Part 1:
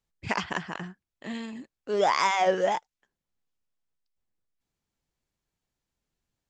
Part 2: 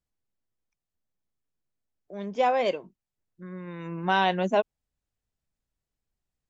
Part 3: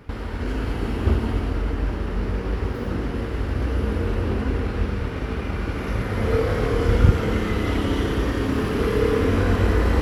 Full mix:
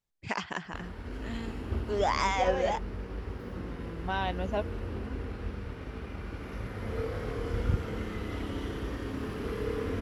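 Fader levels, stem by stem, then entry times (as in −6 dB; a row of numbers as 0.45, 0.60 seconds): −4.5, −9.0, −13.0 decibels; 0.00, 0.00, 0.65 seconds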